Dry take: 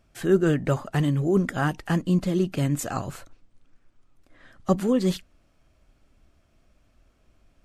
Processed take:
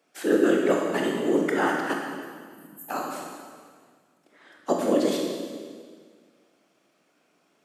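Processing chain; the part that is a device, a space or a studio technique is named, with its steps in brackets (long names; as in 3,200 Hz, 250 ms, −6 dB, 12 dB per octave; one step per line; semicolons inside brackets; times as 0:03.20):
0:01.93–0:02.89: inverse Chebyshev band-stop filter 480–3,100 Hz, stop band 80 dB
whispering ghost (random phases in short frames; high-pass filter 270 Hz 24 dB per octave; convolution reverb RT60 1.8 s, pre-delay 19 ms, DRR −0.5 dB)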